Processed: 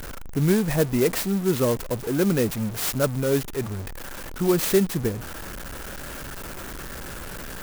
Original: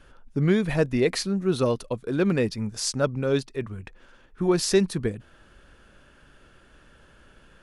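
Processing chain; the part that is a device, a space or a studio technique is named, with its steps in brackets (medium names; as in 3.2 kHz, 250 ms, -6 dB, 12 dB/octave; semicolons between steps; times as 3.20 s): early CD player with a faulty converter (jump at every zero crossing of -30 dBFS; sampling jitter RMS 0.069 ms)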